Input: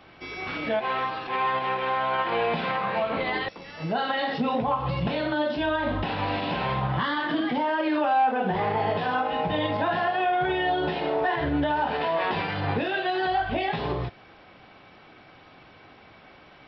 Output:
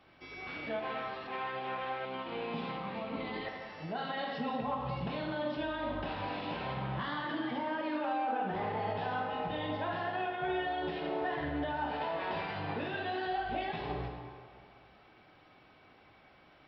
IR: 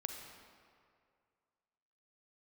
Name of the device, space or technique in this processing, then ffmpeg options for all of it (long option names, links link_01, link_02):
stairwell: -filter_complex "[1:a]atrim=start_sample=2205[link_01];[0:a][link_01]afir=irnorm=-1:irlink=0,asettb=1/sr,asplit=3[link_02][link_03][link_04];[link_02]atrim=end=2.054[link_05];[link_03]atrim=start=2.05:end=3.45,asetpts=PTS-STARTPTS,afade=type=in:duration=0.004:curve=qsin,afade=type=out:start_time=1.396:duration=0.004:curve=qsin,equalizer=frequency=250:width_type=o:width=0.67:gain=7,equalizer=frequency=630:width_type=o:width=0.67:gain=-6,equalizer=frequency=1600:width_type=o:width=0.67:gain=-8[link_06];[link_04]atrim=start=3.446[link_07];[link_05][link_06]acrossfade=duration=0.004:curve1=hsin:curve2=qsin[link_08];[link_08][link_07]acrossfade=duration=0.004:curve1=qsin:curve2=hsin,volume=-9dB"